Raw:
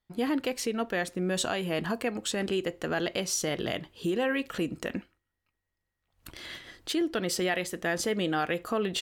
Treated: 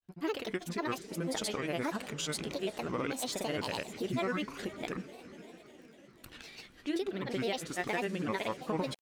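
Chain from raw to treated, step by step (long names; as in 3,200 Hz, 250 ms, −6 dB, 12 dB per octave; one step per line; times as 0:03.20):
feedback delay with all-pass diffusion 480 ms, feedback 57%, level −14.5 dB
granular cloud, pitch spread up and down by 7 semitones
surface crackle 18 per second −48 dBFS
level −4 dB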